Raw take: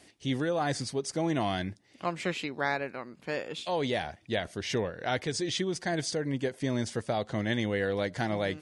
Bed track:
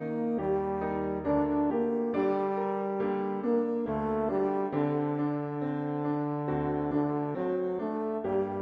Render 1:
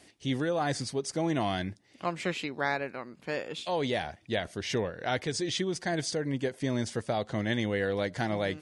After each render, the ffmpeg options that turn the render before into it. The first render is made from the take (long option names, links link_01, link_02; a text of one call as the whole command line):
ffmpeg -i in.wav -af anull out.wav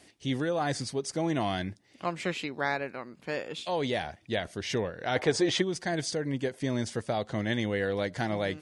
ffmpeg -i in.wav -filter_complex "[0:a]asplit=3[link_01][link_02][link_03];[link_01]afade=type=out:start_time=5.15:duration=0.02[link_04];[link_02]equalizer=frequency=800:width=0.55:gain=14,afade=type=in:start_time=5.15:duration=0.02,afade=type=out:start_time=5.61:duration=0.02[link_05];[link_03]afade=type=in:start_time=5.61:duration=0.02[link_06];[link_04][link_05][link_06]amix=inputs=3:normalize=0" out.wav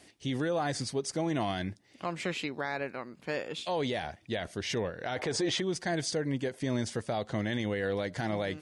ffmpeg -i in.wav -af "alimiter=limit=-22dB:level=0:latency=1:release=35" out.wav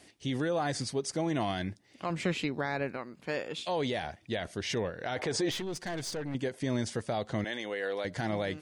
ffmpeg -i in.wav -filter_complex "[0:a]asettb=1/sr,asplit=3[link_01][link_02][link_03];[link_01]atrim=end=2.104[link_04];[link_02]atrim=start=2.1:end=2.97,asetpts=PTS-STARTPTS,afade=type=in:duration=0.004:curve=qsin,afade=type=out:start_time=0.866:duration=0.004:curve=qsin,lowshelf=frequency=260:gain=9[link_05];[link_03]atrim=start=2.966[link_06];[link_04][link_05]acrossfade=duration=0.004:curve1=hsin:curve2=qsin[link_07];[link_07][link_06]acrossfade=duration=0.004:curve1=qsin:curve2=hsin,asettb=1/sr,asplit=3[link_08][link_09][link_10];[link_08]atrim=end=5.514[link_11];[link_09]atrim=start=5.51:end=6.35,asetpts=PTS-STARTPTS,afade=type=in:duration=0.004:curve=qsin,afade=type=out:start_time=0.836:duration=0.004:curve=qsin,aeval=exprs='(tanh(39.8*val(0)+0.4)-tanh(0.4))/39.8':channel_layout=same[link_12];[link_10]atrim=start=6.346[link_13];[link_11][link_12]acrossfade=duration=0.004:curve1=hsin:curve2=qsin[link_14];[link_14][link_13]acrossfade=duration=0.004:curve1=qsin:curve2=hsin,asettb=1/sr,asplit=3[link_15][link_16][link_17];[link_15]atrim=end=7.444[link_18];[link_16]atrim=start=7.44:end=8.05,asetpts=PTS-STARTPTS,afade=type=in:duration=0.004:curve=qsin,afade=type=out:start_time=0.606:duration=0.004:curve=qsin,highpass=420[link_19];[link_17]atrim=start=8.046[link_20];[link_18][link_19]acrossfade=duration=0.004:curve1=hsin:curve2=qsin[link_21];[link_21][link_20]acrossfade=duration=0.004:curve1=qsin:curve2=hsin" out.wav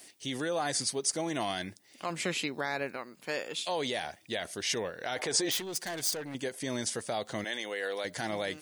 ffmpeg -i in.wav -af "aemphasis=mode=production:type=bsi" out.wav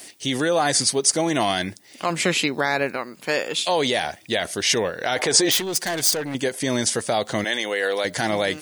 ffmpeg -i in.wav -af "volume=11.5dB" out.wav